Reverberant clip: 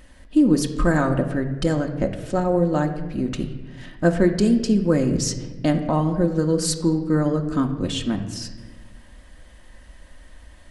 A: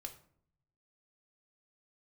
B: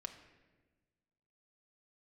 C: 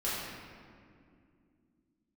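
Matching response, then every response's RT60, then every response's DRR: B; 0.60 s, 1.3 s, 2.4 s; 4.5 dB, 3.0 dB, -10.0 dB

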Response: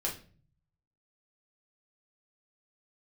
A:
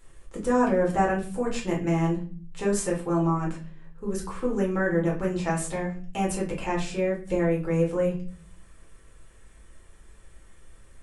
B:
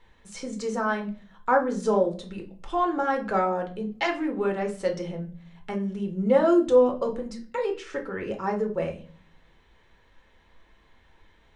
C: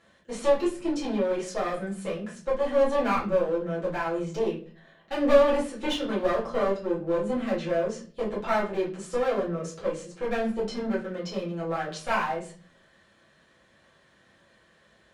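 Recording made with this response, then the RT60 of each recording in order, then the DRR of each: A; no single decay rate, no single decay rate, no single decay rate; -3.5 dB, 2.5 dB, -7.5 dB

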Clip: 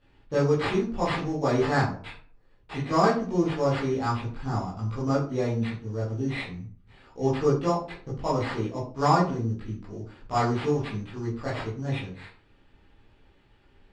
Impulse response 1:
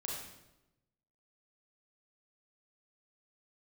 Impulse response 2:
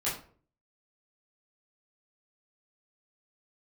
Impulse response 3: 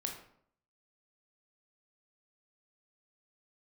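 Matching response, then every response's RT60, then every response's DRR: 2; 0.95 s, 0.50 s, 0.65 s; -3.0 dB, -10.0 dB, 2.0 dB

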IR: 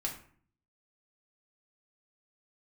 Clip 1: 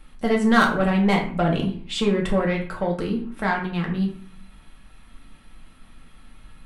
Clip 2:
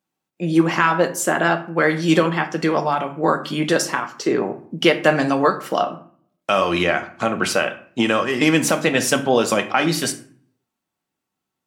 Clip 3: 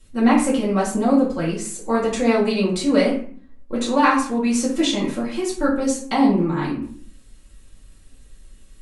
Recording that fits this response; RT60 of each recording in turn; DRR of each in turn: 1; 0.50 s, 0.50 s, 0.50 s; -1.0 dB, 6.5 dB, -7.0 dB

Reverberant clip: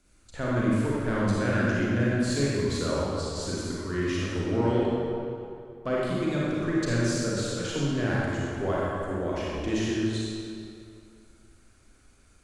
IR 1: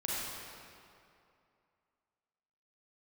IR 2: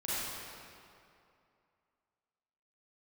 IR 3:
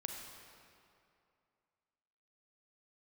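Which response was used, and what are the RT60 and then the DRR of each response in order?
1; 2.6 s, 2.6 s, 2.6 s; -6.5 dB, -11.0 dB, 2.0 dB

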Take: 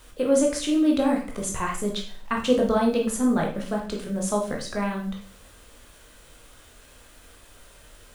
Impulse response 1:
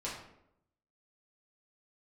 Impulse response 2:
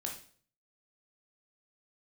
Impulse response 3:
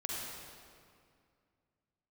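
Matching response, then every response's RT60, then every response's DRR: 2; 0.80 s, 0.50 s, 2.2 s; -7.5 dB, 0.0 dB, -4.0 dB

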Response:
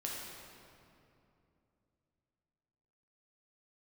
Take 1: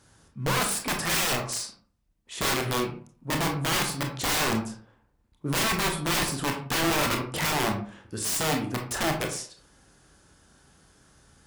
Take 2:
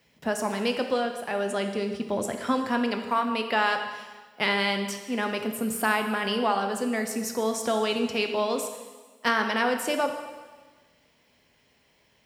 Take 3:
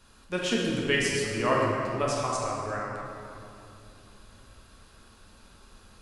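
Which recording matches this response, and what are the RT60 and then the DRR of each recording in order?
3; 0.45 s, 1.3 s, 2.8 s; 2.0 dB, 5.0 dB, -4.0 dB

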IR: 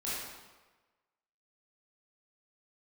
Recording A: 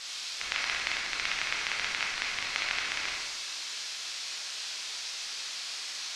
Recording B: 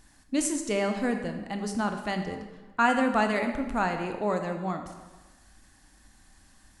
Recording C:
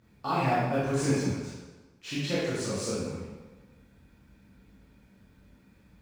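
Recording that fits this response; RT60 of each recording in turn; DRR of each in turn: C; 1.3 s, 1.3 s, 1.3 s; -3.5 dB, 5.0 dB, -9.5 dB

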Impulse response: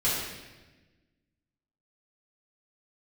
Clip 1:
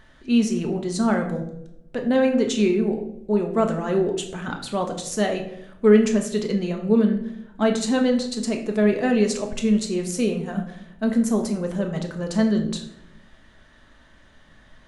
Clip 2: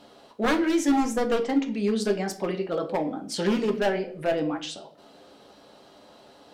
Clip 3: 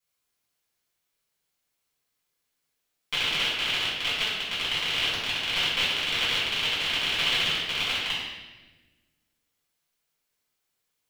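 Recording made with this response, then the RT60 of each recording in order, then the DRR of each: 3; 0.80 s, 0.55 s, 1.2 s; 3.0 dB, 4.0 dB, -9.5 dB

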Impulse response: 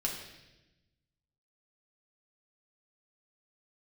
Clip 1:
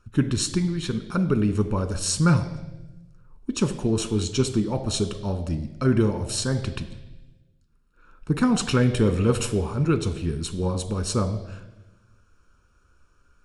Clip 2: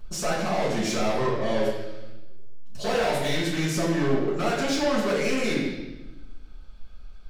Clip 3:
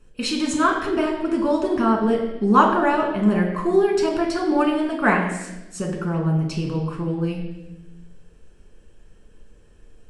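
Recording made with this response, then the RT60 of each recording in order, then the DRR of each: 3; 1.0 s, 1.0 s, 1.0 s; 8.5 dB, -8.0 dB, -1.0 dB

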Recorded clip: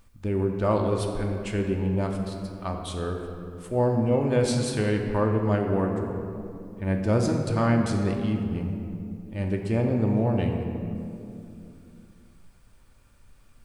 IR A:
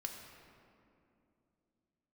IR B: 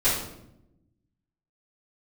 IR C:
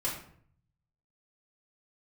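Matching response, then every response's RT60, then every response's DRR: A; 2.7 s, 0.80 s, 0.60 s; 1.5 dB, -15.0 dB, -6.5 dB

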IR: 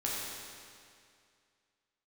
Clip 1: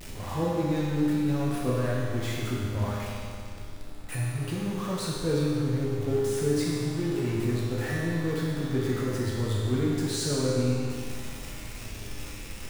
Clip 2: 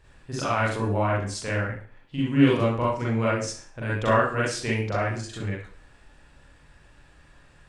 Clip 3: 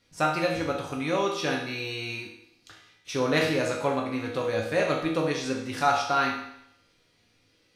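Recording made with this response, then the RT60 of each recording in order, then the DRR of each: 1; 2.3 s, 0.45 s, 0.75 s; -6.0 dB, -6.5 dB, -2.0 dB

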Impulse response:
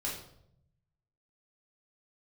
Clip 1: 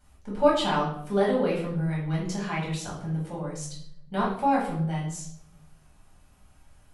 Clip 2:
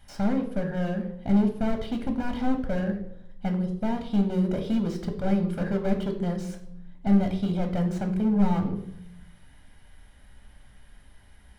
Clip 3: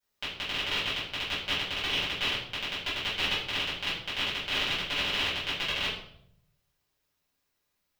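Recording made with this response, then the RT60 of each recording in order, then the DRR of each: 1; 0.70 s, 0.75 s, 0.70 s; -5.0 dB, 4.5 dB, -12.5 dB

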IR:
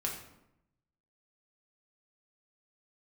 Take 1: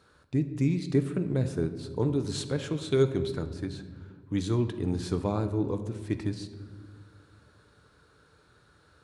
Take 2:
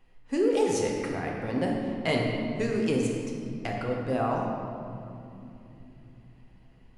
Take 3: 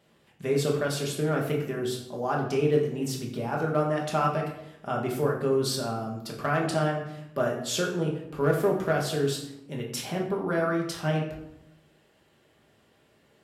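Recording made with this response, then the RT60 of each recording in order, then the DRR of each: 3; no single decay rate, 3.0 s, 0.85 s; 8.0 dB, -1.0 dB, -1.5 dB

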